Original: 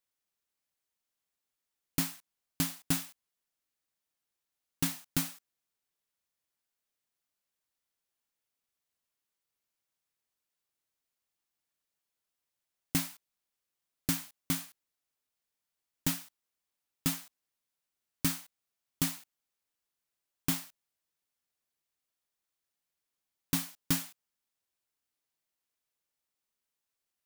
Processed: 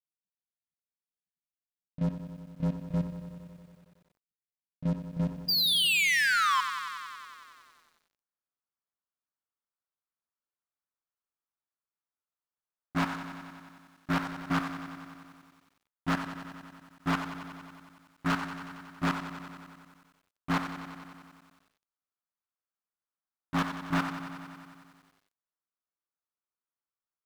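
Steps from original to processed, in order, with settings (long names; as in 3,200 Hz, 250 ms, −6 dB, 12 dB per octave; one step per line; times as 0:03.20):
low-pass filter sweep 190 Hz → 1,300 Hz, 0:05.98–0:08.17
compressor whose output falls as the input rises −37 dBFS, ratio −1
sound drawn into the spectrogram fall, 0:05.48–0:06.61, 1,000–4,900 Hz −35 dBFS
low-pass filter 6,200 Hz 24 dB per octave
leveller curve on the samples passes 5
output level in coarse steps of 13 dB
feedback echo at a low word length 92 ms, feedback 80%, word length 10 bits, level −10.5 dB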